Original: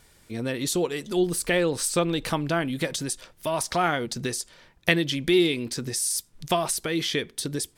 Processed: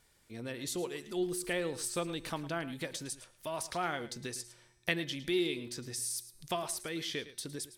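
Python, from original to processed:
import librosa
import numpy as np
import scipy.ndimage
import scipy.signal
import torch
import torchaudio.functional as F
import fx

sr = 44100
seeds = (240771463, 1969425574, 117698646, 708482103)

p1 = fx.low_shelf(x, sr, hz=440.0, db=-3.0)
p2 = fx.comb_fb(p1, sr, f0_hz=120.0, decay_s=1.4, harmonics='odd', damping=0.0, mix_pct=50)
p3 = p2 + fx.echo_single(p2, sr, ms=109, db=-15.0, dry=0)
y = p3 * 10.0 ** (-4.5 / 20.0)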